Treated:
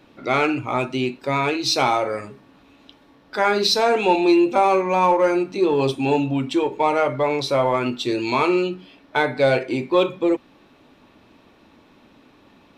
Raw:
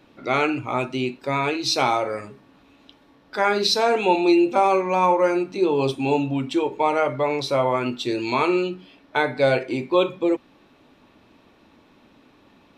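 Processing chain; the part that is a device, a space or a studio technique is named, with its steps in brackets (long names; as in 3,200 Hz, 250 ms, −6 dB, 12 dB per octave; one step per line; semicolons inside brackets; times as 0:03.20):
parallel distortion (in parallel at −11 dB: hard clipping −19.5 dBFS, distortion −9 dB)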